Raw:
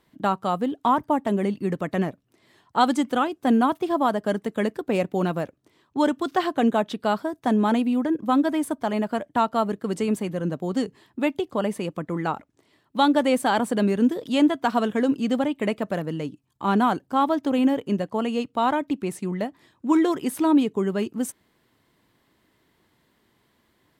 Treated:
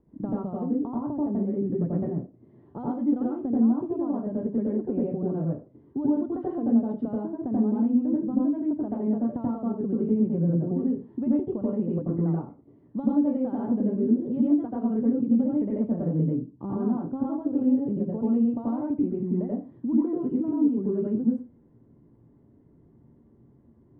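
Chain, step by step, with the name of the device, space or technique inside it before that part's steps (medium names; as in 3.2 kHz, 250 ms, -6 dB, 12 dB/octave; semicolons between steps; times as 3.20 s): television next door (compression 6:1, threshold -32 dBFS, peak gain reduction 17.5 dB; low-pass 330 Hz 12 dB/octave; reverberation RT60 0.30 s, pre-delay 82 ms, DRR -5 dB); trim +6 dB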